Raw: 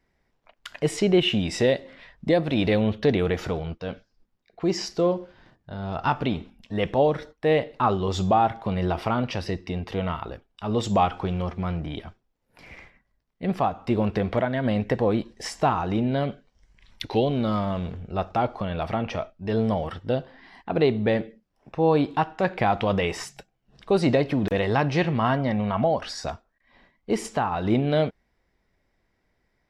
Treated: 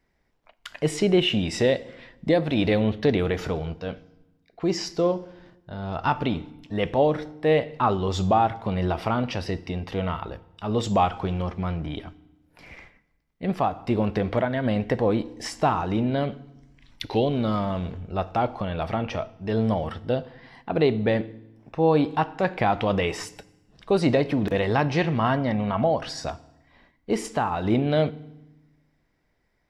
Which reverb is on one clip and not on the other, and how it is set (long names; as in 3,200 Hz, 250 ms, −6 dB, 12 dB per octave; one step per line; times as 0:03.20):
feedback delay network reverb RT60 0.99 s, low-frequency decay 1.5×, high-frequency decay 0.9×, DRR 17 dB